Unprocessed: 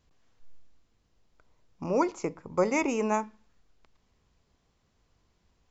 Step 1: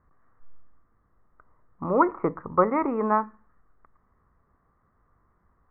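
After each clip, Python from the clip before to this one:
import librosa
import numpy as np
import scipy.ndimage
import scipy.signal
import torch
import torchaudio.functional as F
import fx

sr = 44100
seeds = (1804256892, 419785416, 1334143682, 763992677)

y = fx.rider(x, sr, range_db=10, speed_s=0.5)
y = scipy.signal.sosfilt(scipy.signal.cheby1(5, 1.0, 1900.0, 'lowpass', fs=sr, output='sos'), y)
y = fx.peak_eq(y, sr, hz=1200.0, db=12.0, octaves=0.4)
y = y * librosa.db_to_amplitude(4.0)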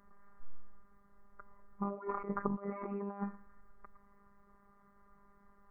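y = fx.over_compress(x, sr, threshold_db=-34.0, ratio=-1.0)
y = fx.robotise(y, sr, hz=200.0)
y = y * librosa.db_to_amplitude(-3.0)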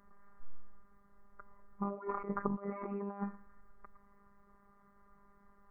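y = x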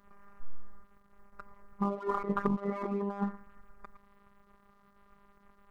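y = fx.leveller(x, sr, passes=1)
y = y * librosa.db_to_amplitude(2.5)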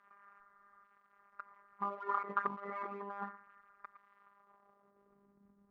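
y = fx.filter_sweep_bandpass(x, sr, from_hz=1500.0, to_hz=210.0, start_s=4.17, end_s=5.46, q=1.4)
y = y * librosa.db_to_amplitude(2.0)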